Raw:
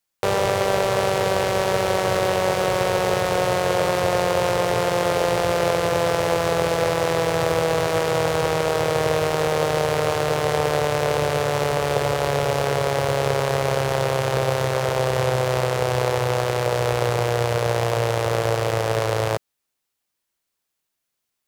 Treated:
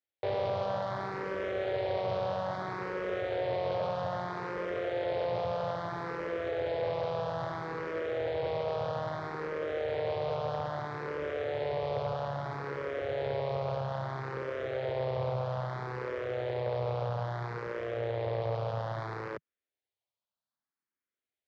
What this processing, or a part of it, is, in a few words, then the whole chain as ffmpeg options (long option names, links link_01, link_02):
barber-pole phaser into a guitar amplifier: -filter_complex "[0:a]asplit=2[link_01][link_02];[link_02]afreqshift=0.61[link_03];[link_01][link_03]amix=inputs=2:normalize=1,asoftclip=type=tanh:threshold=-18dB,highpass=81,equalizer=frequency=160:width_type=q:width=4:gain=-6,equalizer=frequency=620:width_type=q:width=4:gain=3,equalizer=frequency=2700:width_type=q:width=4:gain=-6,lowpass=frequency=4000:width=0.5412,lowpass=frequency=4000:width=1.3066,equalizer=frequency=130:width_type=o:width=1.4:gain=3,volume=-8.5dB"